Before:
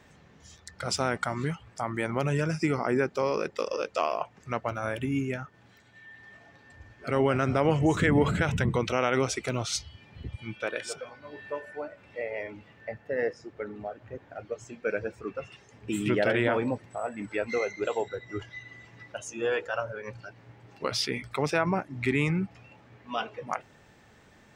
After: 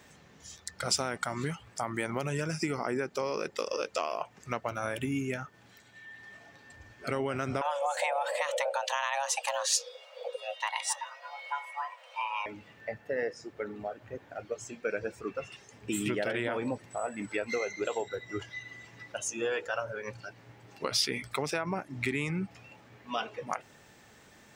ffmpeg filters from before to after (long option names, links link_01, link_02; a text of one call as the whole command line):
ffmpeg -i in.wav -filter_complex "[0:a]asettb=1/sr,asplit=3[link_01][link_02][link_03];[link_01]atrim=end=7.614[link_04];[link_02]atrim=start=7.61:end=12.46,asetpts=PTS-STARTPTS,afade=type=in:duration=0.004:curve=qsin,afade=type=out:start_time=4.846:duration=0.004:curve=qsin,afreqshift=420[link_05];[link_03]atrim=start=12.456[link_06];[link_04][link_05]acrossfade=duration=0.004:curve1=hsin:curve2=qsin[link_07];[link_07][link_06]acrossfade=duration=0.004:curve1=qsin:curve2=hsin,lowshelf=frequency=110:gain=-6.5,acompressor=threshold=-28dB:ratio=6,highshelf=frequency=5300:gain=10" out.wav